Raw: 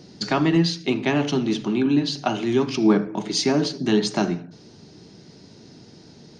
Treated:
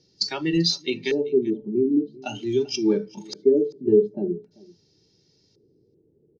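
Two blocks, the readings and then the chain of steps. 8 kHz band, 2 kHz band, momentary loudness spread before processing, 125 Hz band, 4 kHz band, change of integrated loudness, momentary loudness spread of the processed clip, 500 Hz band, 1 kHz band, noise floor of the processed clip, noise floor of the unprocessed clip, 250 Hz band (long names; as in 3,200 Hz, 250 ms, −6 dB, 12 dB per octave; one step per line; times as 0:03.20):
−5.0 dB, −6.5 dB, 6 LU, −7.5 dB, −1.5 dB, −1.5 dB, 10 LU, +3.0 dB, −13.0 dB, −64 dBFS, −48 dBFS, −4.0 dB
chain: noise reduction from a noise print of the clip's start 16 dB
parametric band 1,100 Hz −11.5 dB 1.3 octaves
auto-filter low-pass square 0.45 Hz 420–5,400 Hz
comb filter 2.2 ms, depth 52%
single-tap delay 389 ms −23 dB
level −1.5 dB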